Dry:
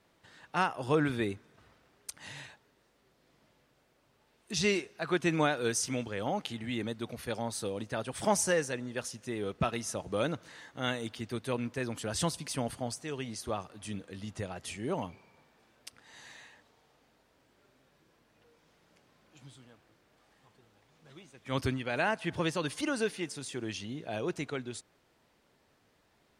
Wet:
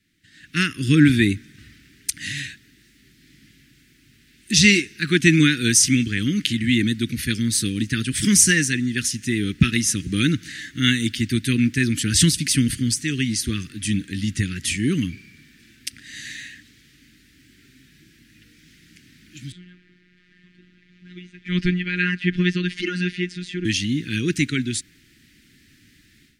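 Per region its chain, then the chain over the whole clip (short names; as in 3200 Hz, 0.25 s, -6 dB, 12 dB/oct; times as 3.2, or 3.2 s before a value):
19.52–23.65 LPF 2700 Hz + robotiser 179 Hz
whole clip: Chebyshev band-stop 300–1800 Hz, order 3; AGC gain up to 15 dB; gain +3 dB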